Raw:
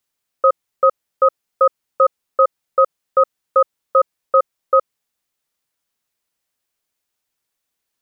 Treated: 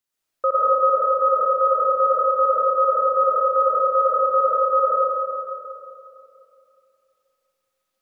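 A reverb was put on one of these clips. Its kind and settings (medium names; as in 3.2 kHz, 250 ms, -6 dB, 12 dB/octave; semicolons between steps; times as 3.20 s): algorithmic reverb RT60 2.8 s, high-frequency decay 0.65×, pre-delay 65 ms, DRR -8 dB; trim -7.5 dB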